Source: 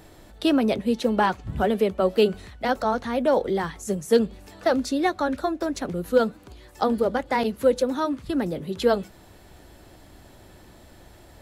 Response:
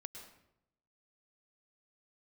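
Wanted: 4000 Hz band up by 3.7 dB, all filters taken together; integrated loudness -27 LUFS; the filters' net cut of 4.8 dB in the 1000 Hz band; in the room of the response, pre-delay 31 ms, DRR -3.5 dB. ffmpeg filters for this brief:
-filter_complex "[0:a]equalizer=f=1k:t=o:g=-7,equalizer=f=4k:t=o:g=5,asplit=2[a][b];[1:a]atrim=start_sample=2205,adelay=31[c];[b][c]afir=irnorm=-1:irlink=0,volume=7.5dB[d];[a][d]amix=inputs=2:normalize=0,volume=-6.5dB"

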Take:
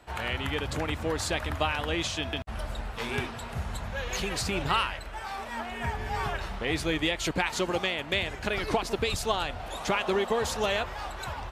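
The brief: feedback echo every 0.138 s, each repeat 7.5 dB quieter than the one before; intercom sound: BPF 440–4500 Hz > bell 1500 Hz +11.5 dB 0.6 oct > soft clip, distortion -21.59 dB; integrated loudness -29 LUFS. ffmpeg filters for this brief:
-af "highpass=440,lowpass=4.5k,equalizer=f=1.5k:t=o:w=0.6:g=11.5,aecho=1:1:138|276|414|552|690:0.422|0.177|0.0744|0.0312|0.0131,asoftclip=threshold=-13dB,volume=-1dB"

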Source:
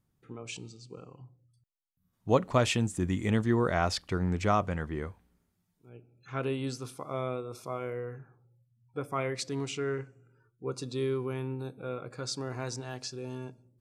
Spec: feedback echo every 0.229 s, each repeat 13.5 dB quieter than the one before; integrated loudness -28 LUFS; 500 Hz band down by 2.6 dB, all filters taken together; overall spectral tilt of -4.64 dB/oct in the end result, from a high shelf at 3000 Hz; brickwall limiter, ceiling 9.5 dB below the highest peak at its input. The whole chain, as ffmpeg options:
-af "equalizer=f=500:t=o:g=-3.5,highshelf=f=3k:g=5.5,alimiter=limit=-22dB:level=0:latency=1,aecho=1:1:229|458:0.211|0.0444,volume=7dB"

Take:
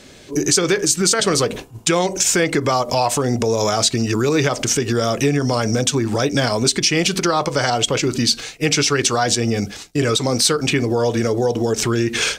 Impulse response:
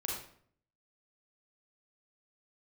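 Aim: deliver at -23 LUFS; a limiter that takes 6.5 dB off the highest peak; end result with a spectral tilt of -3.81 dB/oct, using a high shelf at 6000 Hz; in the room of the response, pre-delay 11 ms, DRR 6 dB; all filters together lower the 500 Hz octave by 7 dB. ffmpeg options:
-filter_complex "[0:a]equalizer=f=500:t=o:g=-9,highshelf=f=6k:g=-4.5,alimiter=limit=-11.5dB:level=0:latency=1,asplit=2[a][b];[1:a]atrim=start_sample=2205,adelay=11[c];[b][c]afir=irnorm=-1:irlink=0,volume=-8.5dB[d];[a][d]amix=inputs=2:normalize=0,volume=-1.5dB"

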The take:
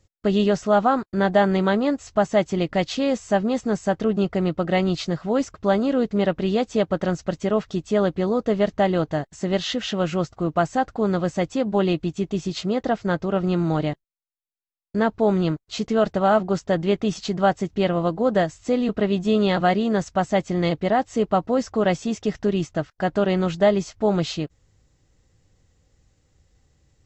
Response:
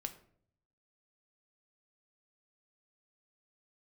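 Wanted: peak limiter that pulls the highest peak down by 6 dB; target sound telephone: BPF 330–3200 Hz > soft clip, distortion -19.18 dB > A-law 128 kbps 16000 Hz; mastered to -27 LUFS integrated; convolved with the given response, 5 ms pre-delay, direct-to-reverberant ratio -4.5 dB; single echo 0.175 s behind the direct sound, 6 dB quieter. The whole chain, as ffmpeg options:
-filter_complex "[0:a]alimiter=limit=-12.5dB:level=0:latency=1,aecho=1:1:175:0.501,asplit=2[a][b];[1:a]atrim=start_sample=2205,adelay=5[c];[b][c]afir=irnorm=-1:irlink=0,volume=6.5dB[d];[a][d]amix=inputs=2:normalize=0,highpass=330,lowpass=3.2k,asoftclip=threshold=-8dB,volume=-6.5dB" -ar 16000 -c:a pcm_alaw

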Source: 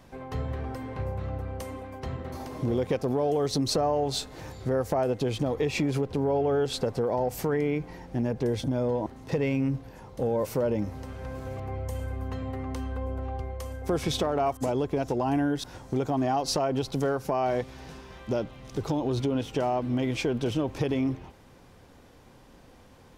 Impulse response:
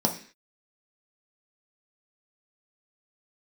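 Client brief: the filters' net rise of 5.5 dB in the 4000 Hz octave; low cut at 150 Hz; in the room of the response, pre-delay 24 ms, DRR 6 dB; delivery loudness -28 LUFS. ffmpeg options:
-filter_complex "[0:a]highpass=150,equalizer=f=4k:t=o:g=6.5,asplit=2[a][b];[1:a]atrim=start_sample=2205,adelay=24[c];[b][c]afir=irnorm=-1:irlink=0,volume=-16.5dB[d];[a][d]amix=inputs=2:normalize=0,volume=-1.5dB"

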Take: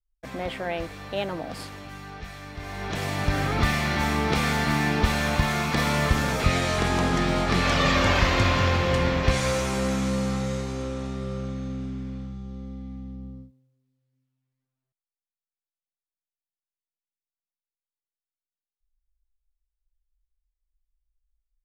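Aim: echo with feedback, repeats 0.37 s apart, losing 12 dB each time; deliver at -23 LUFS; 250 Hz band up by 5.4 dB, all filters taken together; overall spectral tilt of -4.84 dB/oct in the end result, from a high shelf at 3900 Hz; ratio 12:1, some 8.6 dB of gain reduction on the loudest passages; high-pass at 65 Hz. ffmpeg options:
-af "highpass=65,equalizer=f=250:t=o:g=7,highshelf=f=3.9k:g=6,acompressor=threshold=-24dB:ratio=12,aecho=1:1:370|740|1110:0.251|0.0628|0.0157,volume=6dB"

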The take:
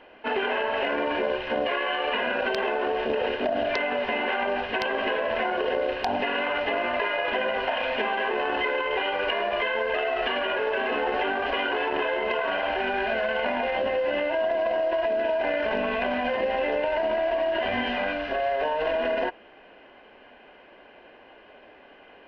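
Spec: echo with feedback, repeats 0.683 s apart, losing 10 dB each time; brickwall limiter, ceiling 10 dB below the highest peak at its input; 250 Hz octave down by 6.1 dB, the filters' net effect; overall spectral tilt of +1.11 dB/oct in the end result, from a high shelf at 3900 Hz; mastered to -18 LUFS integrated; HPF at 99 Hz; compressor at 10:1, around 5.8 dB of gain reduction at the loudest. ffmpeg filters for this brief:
-af "highpass=99,equalizer=f=250:t=o:g=-8,highshelf=f=3.9k:g=5.5,acompressor=threshold=-28dB:ratio=10,alimiter=level_in=0.5dB:limit=-24dB:level=0:latency=1,volume=-0.5dB,aecho=1:1:683|1366|2049|2732:0.316|0.101|0.0324|0.0104,volume=15dB"

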